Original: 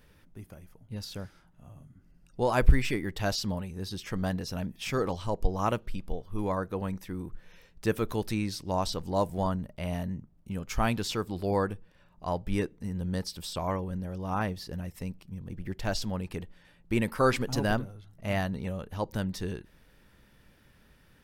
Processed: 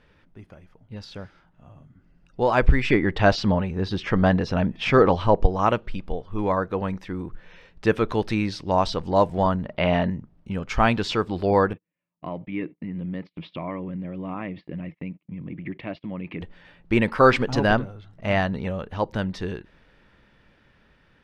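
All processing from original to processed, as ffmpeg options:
-filter_complex "[0:a]asettb=1/sr,asplit=3[s0][s1][s2];[s0]atrim=end=2.904[s3];[s1]atrim=start=2.9:end=5.46,asetpts=PTS-STARTPTS,afade=t=in:d=0.004:c=qsin,afade=t=out:st=2.556:d=0.004:c=qsin,lowpass=f=2800:p=1,acontrast=57[s4];[s2]atrim=start=5.456[s5];[s3][s4]acrossfade=d=0.004:c1=hsin:c2=qsin[s6];[s6][s5]acrossfade=d=0.004:c1=qsin:c2=hsin,asettb=1/sr,asplit=3[s7][s8][s9];[s7]atrim=end=9.654[s10];[s8]atrim=start=9.65:end=10.1,asetpts=PTS-STARTPTS,afade=t=in:d=0.004:c=qsin,afade=t=out:st=0.446:d=0.004:c=qsin,lowpass=f=4300:w=0.5412,lowpass=f=4300:w=1.3066,lowshelf=f=110:g=-12,acontrast=90[s11];[s9]atrim=start=10.096[s12];[s10][s11]acrossfade=d=0.004:c1=hsin:c2=qsin[s13];[s13][s12]acrossfade=d=0.004:c1=qsin:c2=hsin,asettb=1/sr,asplit=3[s14][s15][s16];[s14]atrim=end=11.734[s17];[s15]atrim=start=11.73:end=16.41,asetpts=PTS-STARTPTS,afade=t=in:d=0.004:c=qsin,afade=t=out:st=4.676:d=0.004:c=qsin,acompressor=threshold=0.0158:ratio=3:attack=3.2:release=140:knee=1:detection=peak,highpass=150,equalizer=f=160:t=q:w=4:g=8,equalizer=f=300:t=q:w=4:g=8,equalizer=f=430:t=q:w=4:g=-5,equalizer=f=830:t=q:w=4:g=-8,equalizer=f=1500:t=q:w=4:g=-10,equalizer=f=2200:t=q:w=4:g=8,lowpass=f=3000:w=0.5412,lowpass=f=3000:w=1.3066,agate=range=0.0251:threshold=0.00282:ratio=16:release=100:detection=peak[s18];[s16]atrim=start=16.406[s19];[s17][s18]acrossfade=d=0.004:c1=hsin:c2=qsin[s20];[s20][s19]acrossfade=d=0.004:c1=qsin:c2=hsin,dynaudnorm=f=550:g=9:m=1.88,lowpass=3400,lowshelf=f=270:g=-5.5,volume=1.68"

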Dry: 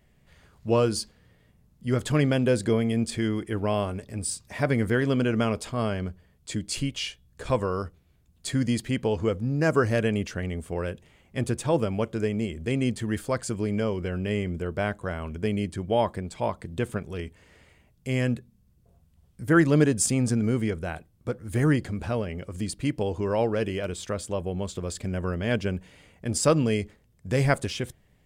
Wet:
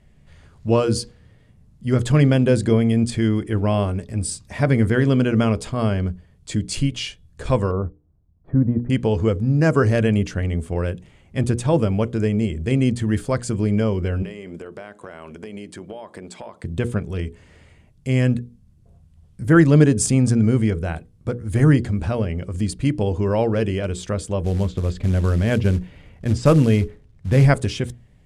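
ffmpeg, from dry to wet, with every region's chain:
-filter_complex "[0:a]asettb=1/sr,asplit=3[s0][s1][s2];[s0]atrim=end=7.714[s3];[s1]atrim=start=7.71:end=8.9,asetpts=PTS-STARTPTS,afade=t=in:d=0.004:c=qsin,afade=t=out:st=1.186:d=0.004:c=qsin,lowpass=f=1100:w=0.5412,lowpass=f=1100:w=1.3066,agate=range=0.398:threshold=0.00316:ratio=16:release=100:detection=peak[s4];[s2]atrim=start=8.896[s5];[s3][s4]acrossfade=d=0.004:c1=hsin:c2=qsin[s6];[s6][s5]acrossfade=d=0.004:c1=qsin:c2=hsin,asettb=1/sr,asplit=3[s7][s8][s9];[s7]atrim=end=14.224[s10];[s8]atrim=start=14.22:end=16.64,asetpts=PTS-STARTPTS,afade=t=in:d=0.004:c=qsin,afade=t=out:st=2.416:d=0.004:c=qsin,highpass=320,acompressor=threshold=0.0178:ratio=12:attack=3.2:release=140:knee=1:detection=peak[s11];[s9]atrim=start=16.636[s12];[s10][s11]acrossfade=d=0.004:c1=hsin:c2=qsin[s13];[s13][s12]acrossfade=d=0.004:c1=qsin:c2=hsin,asettb=1/sr,asplit=3[s14][s15][s16];[s14]atrim=end=24.444[s17];[s15]atrim=start=24.44:end=27.45,asetpts=PTS-STARTPTS,afade=t=in:d=0.004:c=qsin,afade=t=out:st=3.006:d=0.004:c=qsin,lowpass=3500,lowshelf=f=69:g=9,acrusher=bits=5:mode=log:mix=0:aa=0.000001[s18];[s16]atrim=start=27.446[s19];[s17][s18]acrossfade=d=0.004:c1=hsin:c2=qsin[s20];[s20][s19]acrossfade=d=0.004:c1=qsin:c2=hsin,lowpass=f=11000:w=0.5412,lowpass=f=11000:w=1.3066,lowshelf=f=240:g=9,bandreject=f=60:t=h:w=6,bandreject=f=120:t=h:w=6,bandreject=f=180:t=h:w=6,bandreject=f=240:t=h:w=6,bandreject=f=300:t=h:w=6,bandreject=f=360:t=h:w=6,bandreject=f=420:t=h:w=6,bandreject=f=480:t=h:w=6,volume=1.41"

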